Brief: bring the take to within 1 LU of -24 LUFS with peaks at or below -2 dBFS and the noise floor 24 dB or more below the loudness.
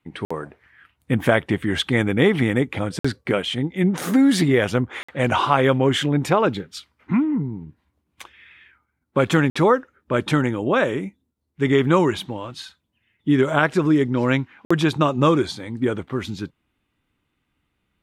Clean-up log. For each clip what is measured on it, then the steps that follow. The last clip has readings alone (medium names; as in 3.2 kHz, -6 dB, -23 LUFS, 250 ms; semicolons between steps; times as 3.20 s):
dropouts 5; longest dropout 55 ms; loudness -20.5 LUFS; peak level -3.0 dBFS; loudness target -24.0 LUFS
-> interpolate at 0.25/2.99/5.03/9.50/14.65 s, 55 ms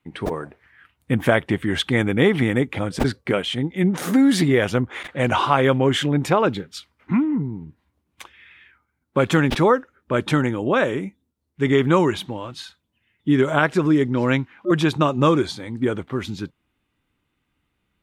dropouts 0; loudness -20.5 LUFS; peak level -3.0 dBFS; loudness target -24.0 LUFS
-> trim -3.5 dB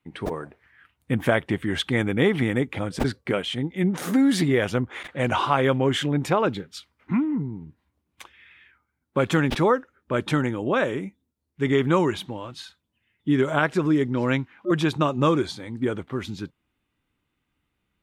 loudness -24.0 LUFS; peak level -6.5 dBFS; noise floor -78 dBFS